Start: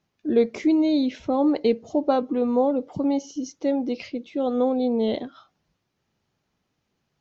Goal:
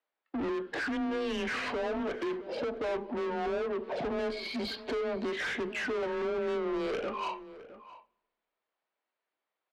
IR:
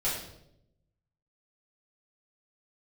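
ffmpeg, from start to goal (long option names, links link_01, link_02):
-filter_complex "[0:a]acrossover=split=3600[link_01][link_02];[link_02]acompressor=threshold=-51dB:ratio=4:attack=1:release=60[link_03];[link_01][link_03]amix=inputs=2:normalize=0,lowpass=5900,agate=range=-33dB:threshold=-42dB:ratio=3:detection=peak,highpass=590,acompressor=threshold=-41dB:ratio=6,asplit=2[link_04][link_05];[link_05]highpass=frequency=720:poles=1,volume=25dB,asoftclip=type=tanh:threshold=-28.5dB[link_06];[link_04][link_06]amix=inputs=2:normalize=0,lowpass=frequency=2600:poles=1,volume=-6dB,asoftclip=type=tanh:threshold=-38.5dB,afreqshift=28,asplit=2[link_07][link_08];[link_08]adelay=489.8,volume=-15dB,highshelf=frequency=4000:gain=-11[link_09];[link_07][link_09]amix=inputs=2:normalize=0,asplit=2[link_10][link_11];[1:a]atrim=start_sample=2205[link_12];[link_11][link_12]afir=irnorm=-1:irlink=0,volume=-27.5dB[link_13];[link_10][link_13]amix=inputs=2:normalize=0,asetrate=32667,aresample=44100,volume=8dB"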